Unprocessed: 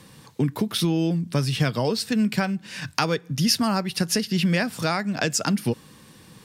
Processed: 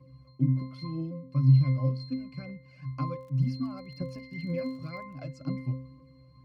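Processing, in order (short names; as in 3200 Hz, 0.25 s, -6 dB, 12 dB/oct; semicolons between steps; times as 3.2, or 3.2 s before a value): phaser 2 Hz, delay 1.6 ms, feedback 57%; octave resonator C, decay 0.53 s; 3.05–5.16 crackle 37/s -55 dBFS; gain +7 dB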